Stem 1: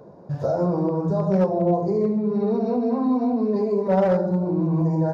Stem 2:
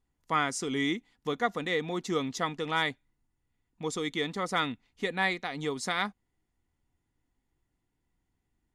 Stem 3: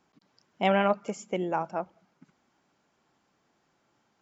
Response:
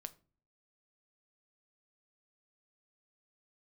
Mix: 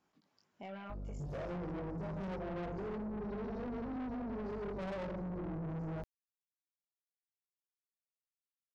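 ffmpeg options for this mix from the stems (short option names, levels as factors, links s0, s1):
-filter_complex "[0:a]equalizer=f=1500:t=o:w=1.4:g=-13,aeval=exprs='val(0)+0.0282*(sin(2*PI*50*n/s)+sin(2*PI*2*50*n/s)/2+sin(2*PI*3*50*n/s)/3+sin(2*PI*4*50*n/s)/4+sin(2*PI*5*50*n/s)/5)':c=same,adelay=900,volume=1.06[s0];[2:a]volume=0.562,flanger=delay=19:depth=2:speed=0.67,alimiter=level_in=1.12:limit=0.0631:level=0:latency=1:release=171,volume=0.891,volume=1[s1];[s0][s1]amix=inputs=2:normalize=0,asoftclip=type=tanh:threshold=0.0376,alimiter=level_in=5.31:limit=0.0631:level=0:latency=1:release=147,volume=0.188"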